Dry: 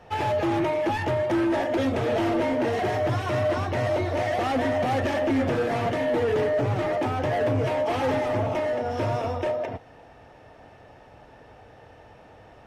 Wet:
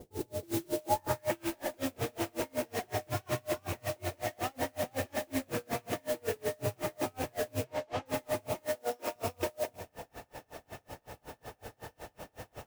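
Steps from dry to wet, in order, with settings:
loose part that buzzes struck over −30 dBFS, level −29 dBFS
0:08.75–0:09.16: high-pass filter 250 Hz 24 dB per octave
downward compressor 5 to 1, threshold −36 dBFS, peak gain reduction 13.5 dB
low-pass filter sweep 370 Hz → 7,100 Hz, 0:00.68–0:01.62
noise that follows the level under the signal 11 dB
0:07.64–0:08.06: high-frequency loss of the air 100 metres
four-comb reverb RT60 1.1 s, combs from 31 ms, DRR 8 dB
tremolo with a sine in dB 5.4 Hz, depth 35 dB
level +6.5 dB

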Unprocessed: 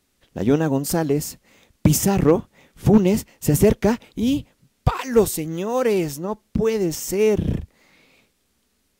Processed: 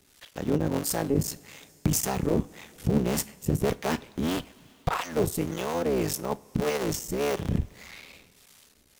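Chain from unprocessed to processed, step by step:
sub-harmonics by changed cycles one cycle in 3, muted
reversed playback
downward compressor 4 to 1, threshold −28 dBFS, peak gain reduction 15.5 dB
reversed playback
two-band tremolo in antiphase 1.7 Hz, depth 70%, crossover 520 Hz
coupled-rooms reverb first 0.31 s, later 2.5 s, from −18 dB, DRR 14.5 dB
one half of a high-frequency compander encoder only
level +6.5 dB

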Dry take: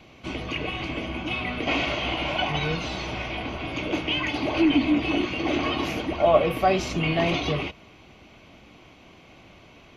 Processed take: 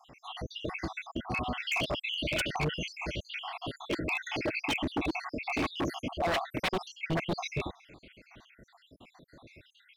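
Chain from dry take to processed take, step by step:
time-frequency cells dropped at random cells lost 74%
0:06.46–0:07.29: high-shelf EQ 5,100 Hz → 3,000 Hz −12 dB
wave folding −23.5 dBFS

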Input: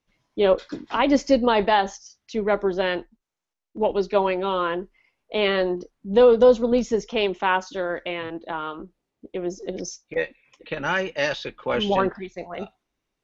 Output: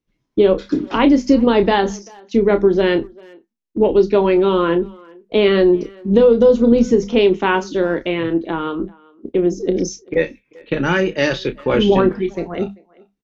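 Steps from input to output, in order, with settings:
mains-hum notches 50/100/150/200/250 Hz
noise gate −42 dBFS, range −12 dB
low shelf with overshoot 480 Hz +8 dB, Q 1.5
downward compressor, threshold −14 dBFS, peak gain reduction 9 dB
double-tracking delay 30 ms −10 dB
far-end echo of a speakerphone 390 ms, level −24 dB
level +5 dB

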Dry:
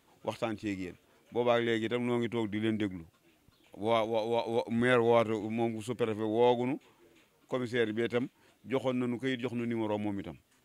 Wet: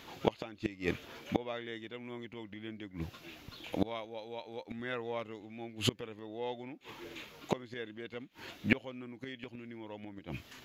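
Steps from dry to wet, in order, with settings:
moving average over 5 samples
gate with flip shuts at −28 dBFS, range −27 dB
high-shelf EQ 2,200 Hz +11 dB
level +13 dB

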